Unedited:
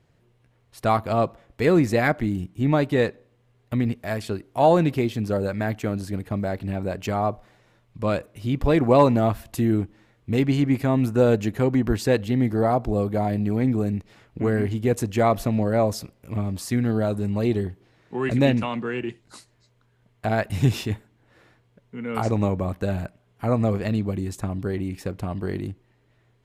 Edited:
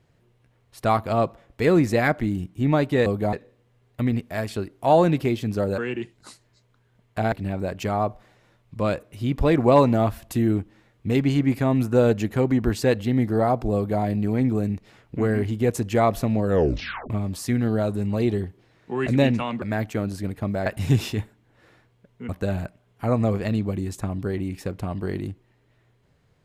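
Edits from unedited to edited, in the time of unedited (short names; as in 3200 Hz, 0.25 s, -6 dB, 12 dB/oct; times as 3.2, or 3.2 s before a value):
5.51–6.55 swap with 18.85–20.39
12.98–13.25 copy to 3.06
15.67 tape stop 0.66 s
22.02–22.69 cut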